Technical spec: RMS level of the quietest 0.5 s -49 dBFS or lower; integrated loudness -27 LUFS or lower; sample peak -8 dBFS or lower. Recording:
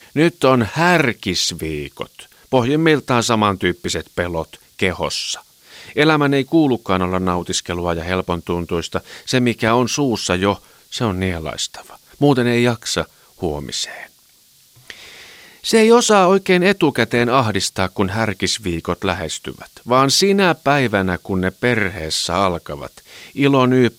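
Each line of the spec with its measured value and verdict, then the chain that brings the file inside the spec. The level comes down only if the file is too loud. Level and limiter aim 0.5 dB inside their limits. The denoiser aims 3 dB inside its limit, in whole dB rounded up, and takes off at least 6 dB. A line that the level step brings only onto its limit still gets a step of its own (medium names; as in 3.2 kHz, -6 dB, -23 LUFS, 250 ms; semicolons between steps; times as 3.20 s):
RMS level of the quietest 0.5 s -52 dBFS: pass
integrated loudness -17.5 LUFS: fail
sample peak -2.0 dBFS: fail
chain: trim -10 dB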